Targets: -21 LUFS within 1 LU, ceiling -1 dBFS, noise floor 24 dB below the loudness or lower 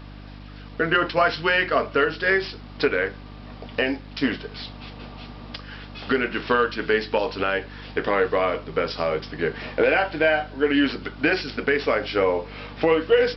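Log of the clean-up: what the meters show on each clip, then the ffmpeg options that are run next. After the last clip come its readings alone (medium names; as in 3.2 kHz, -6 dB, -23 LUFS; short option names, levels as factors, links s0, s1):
hum 50 Hz; highest harmonic 300 Hz; hum level -39 dBFS; loudness -23.0 LUFS; peak level -8.0 dBFS; loudness target -21.0 LUFS
-> -af "bandreject=f=50:t=h:w=4,bandreject=f=100:t=h:w=4,bandreject=f=150:t=h:w=4,bandreject=f=200:t=h:w=4,bandreject=f=250:t=h:w=4,bandreject=f=300:t=h:w=4"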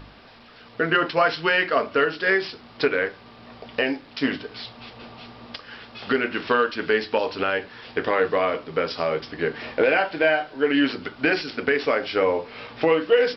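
hum not found; loudness -23.0 LUFS; peak level -8.0 dBFS; loudness target -21.0 LUFS
-> -af "volume=1.26"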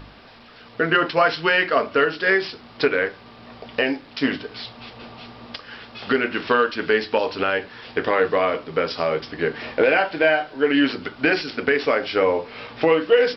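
loudness -21.0 LUFS; peak level -6.0 dBFS; noise floor -46 dBFS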